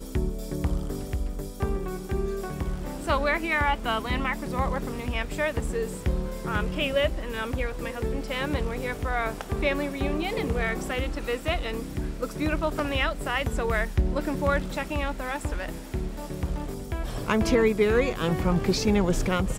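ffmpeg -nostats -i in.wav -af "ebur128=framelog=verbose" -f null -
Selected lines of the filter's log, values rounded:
Integrated loudness:
  I:         -27.9 LUFS
  Threshold: -37.9 LUFS
Loudness range:
  LRA:         3.2 LU
  Threshold: -48.2 LUFS
  LRA low:   -29.4 LUFS
  LRA high:  -26.2 LUFS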